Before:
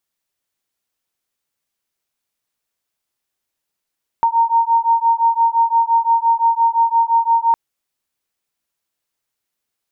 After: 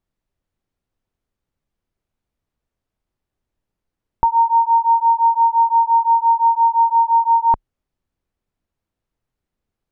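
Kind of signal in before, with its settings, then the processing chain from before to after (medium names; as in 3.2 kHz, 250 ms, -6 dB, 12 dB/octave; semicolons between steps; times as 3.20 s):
beating tones 919 Hz, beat 5.8 Hz, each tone -15 dBFS 3.31 s
tilt EQ -4.5 dB/octave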